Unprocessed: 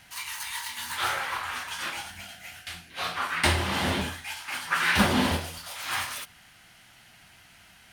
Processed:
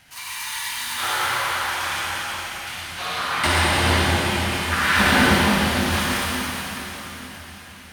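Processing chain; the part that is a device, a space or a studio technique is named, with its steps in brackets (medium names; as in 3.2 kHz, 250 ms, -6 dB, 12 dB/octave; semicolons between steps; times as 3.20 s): cathedral (reverberation RT60 4.5 s, pre-delay 45 ms, DRR -7 dB)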